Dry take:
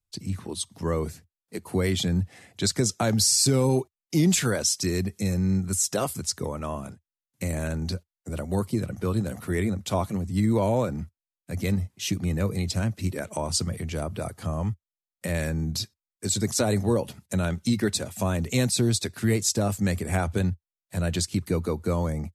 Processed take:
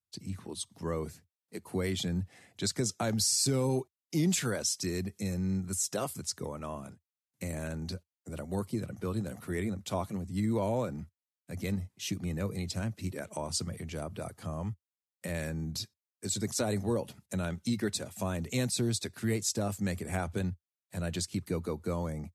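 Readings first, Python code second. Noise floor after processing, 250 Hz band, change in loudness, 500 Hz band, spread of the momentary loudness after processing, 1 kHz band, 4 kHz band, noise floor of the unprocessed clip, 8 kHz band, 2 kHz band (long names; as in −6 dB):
below −85 dBFS, −7.0 dB, −7.5 dB, −7.0 dB, 12 LU, −7.0 dB, −7.0 dB, below −85 dBFS, −7.0 dB, −7.0 dB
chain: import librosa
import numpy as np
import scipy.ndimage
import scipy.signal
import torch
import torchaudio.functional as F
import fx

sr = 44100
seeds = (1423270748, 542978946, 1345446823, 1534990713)

y = scipy.signal.sosfilt(scipy.signal.butter(2, 86.0, 'highpass', fs=sr, output='sos'), x)
y = F.gain(torch.from_numpy(y), -7.0).numpy()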